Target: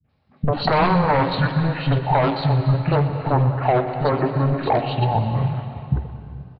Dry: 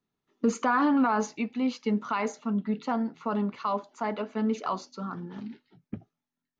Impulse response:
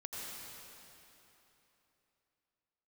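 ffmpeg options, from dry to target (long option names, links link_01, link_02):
-filter_complex "[0:a]highpass=frequency=74:poles=1,aeval=exprs='0.188*sin(PI/2*2.82*val(0)/0.188)':channel_layout=same,equalizer=frequency=110:width_type=o:width=0.4:gain=10.5,bandreject=frequency=378.5:width_type=h:width=4,bandreject=frequency=757:width_type=h:width=4,bandreject=frequency=1135.5:width_type=h:width=4,bandreject=frequency=1514:width_type=h:width=4,bandreject=frequency=1892.5:width_type=h:width=4,bandreject=frequency=2271:width_type=h:width=4,bandreject=frequency=2649.5:width_type=h:width=4,bandreject=frequency=3028:width_type=h:width=4,bandreject=frequency=3406.5:width_type=h:width=4,bandreject=frequency=3785:width_type=h:width=4,bandreject=frequency=4163.5:width_type=h:width=4,bandreject=frequency=4542:width_type=h:width=4,bandreject=frequency=4920.5:width_type=h:width=4,bandreject=frequency=5299:width_type=h:width=4,bandreject=frequency=5677.5:width_type=h:width=4,bandreject=frequency=6056:width_type=h:width=4,bandreject=frequency=6434.5:width_type=h:width=4,bandreject=frequency=6813:width_type=h:width=4,bandreject=frequency=7191.5:width_type=h:width=4,bandreject=frequency=7570:width_type=h:width=4,bandreject=frequency=7948.5:width_type=h:width=4,bandreject=frequency=8327:width_type=h:width=4,bandreject=frequency=8705.5:width_type=h:width=4,bandreject=frequency=9084:width_type=h:width=4,bandreject=frequency=9462.5:width_type=h:width=4,bandreject=frequency=9841:width_type=h:width=4,bandreject=frequency=10219.5:width_type=h:width=4,bandreject=frequency=10598:width_type=h:width=4,bandreject=frequency=10976.5:width_type=h:width=4,bandreject=frequency=11355:width_type=h:width=4,bandreject=frequency=11733.5:width_type=h:width=4,bandreject=frequency=12112:width_type=h:width=4,bandreject=frequency=12490.5:width_type=h:width=4,bandreject=frequency=12869:width_type=h:width=4,acompressor=threshold=-22dB:ratio=6,adynamicequalizer=threshold=0.00562:dfrequency=1600:dqfactor=3:tfrequency=1600:tqfactor=3:attack=5:release=100:ratio=0.375:range=3:mode=boostabove:tftype=bell,asetrate=27781,aresample=44100,atempo=1.5874,acrossover=split=250|2400[link_01][link_02][link_03];[link_02]adelay=40[link_04];[link_03]adelay=90[link_05];[link_01][link_04][link_05]amix=inputs=3:normalize=0,asplit=2[link_06][link_07];[1:a]atrim=start_sample=2205,asetrate=57330,aresample=44100,adelay=123[link_08];[link_07][link_08]afir=irnorm=-1:irlink=0,volume=-5.5dB[link_09];[link_06][link_09]amix=inputs=2:normalize=0,aresample=11025,aresample=44100,volume=6dB"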